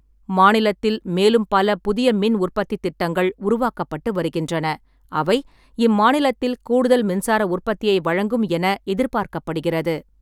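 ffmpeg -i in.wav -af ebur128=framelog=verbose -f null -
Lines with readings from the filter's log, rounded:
Integrated loudness:
  I:         -19.9 LUFS
  Threshold: -30.0 LUFS
Loudness range:
  LRA:         3.8 LU
  Threshold: -40.2 LUFS
  LRA low:   -22.5 LUFS
  LRA high:  -18.7 LUFS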